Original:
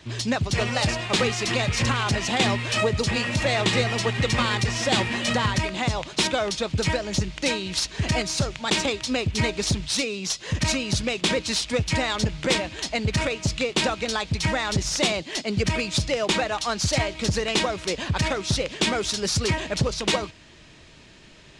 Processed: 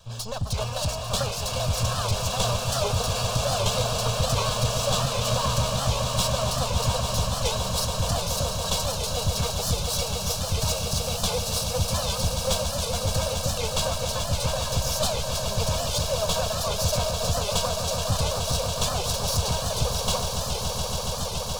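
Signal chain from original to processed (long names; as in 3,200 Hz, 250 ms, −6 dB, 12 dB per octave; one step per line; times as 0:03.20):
lower of the sound and its delayed copy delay 1.8 ms
phaser with its sweep stopped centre 820 Hz, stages 4
echo that builds up and dies away 141 ms, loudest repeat 8, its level −10 dB
wow of a warped record 78 rpm, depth 160 cents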